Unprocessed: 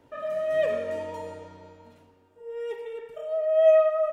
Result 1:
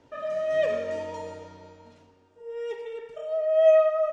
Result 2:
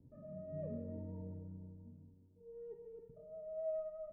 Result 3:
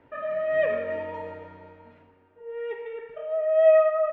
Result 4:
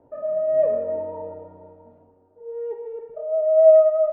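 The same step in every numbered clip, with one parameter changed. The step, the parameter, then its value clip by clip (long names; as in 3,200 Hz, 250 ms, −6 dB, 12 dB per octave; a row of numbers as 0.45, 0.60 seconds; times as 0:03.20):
low-pass with resonance, frequency: 6,100, 170, 2,100, 710 Hertz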